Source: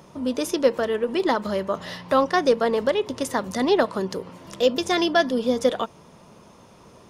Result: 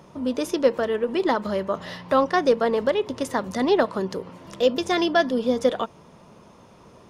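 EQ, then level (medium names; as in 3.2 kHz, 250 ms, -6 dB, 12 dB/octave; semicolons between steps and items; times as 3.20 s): treble shelf 4.5 kHz -6 dB; 0.0 dB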